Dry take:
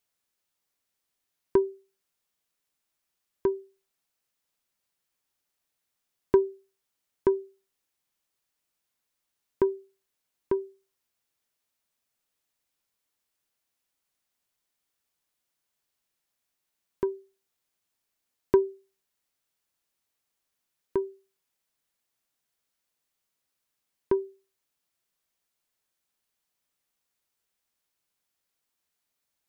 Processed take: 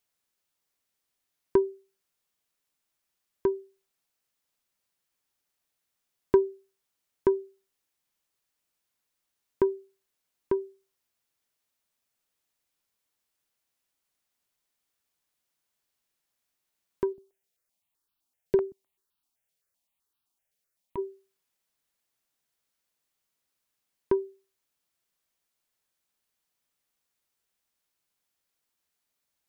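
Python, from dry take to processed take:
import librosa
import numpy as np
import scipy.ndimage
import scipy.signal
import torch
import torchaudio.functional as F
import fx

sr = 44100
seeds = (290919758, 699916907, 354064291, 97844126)

y = fx.phaser_held(x, sr, hz=7.8, low_hz=290.0, high_hz=2000.0, at=(17.12, 20.97), fade=0.02)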